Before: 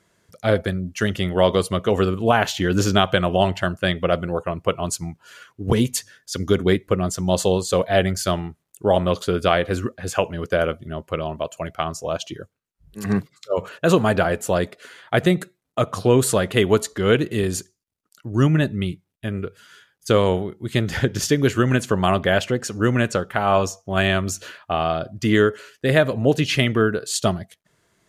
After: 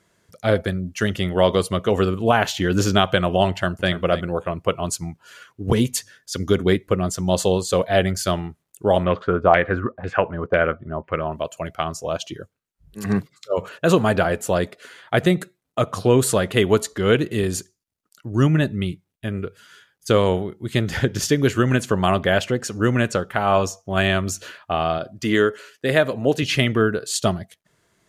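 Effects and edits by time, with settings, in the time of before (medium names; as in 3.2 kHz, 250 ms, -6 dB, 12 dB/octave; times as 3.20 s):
3.50–3.91 s: echo throw 290 ms, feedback 10%, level -13 dB
9.04–11.32 s: LFO low-pass saw down 2 Hz 860–2300 Hz
24.98–26.43 s: high-pass 210 Hz 6 dB/octave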